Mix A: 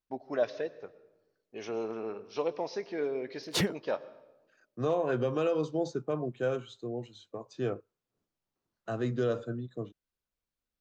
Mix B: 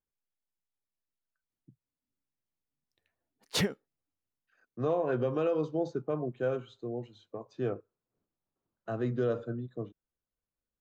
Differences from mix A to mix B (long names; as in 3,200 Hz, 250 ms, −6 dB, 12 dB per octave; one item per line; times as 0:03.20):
first voice: muted
second voice: add low-pass filter 1,900 Hz 6 dB per octave
reverb: off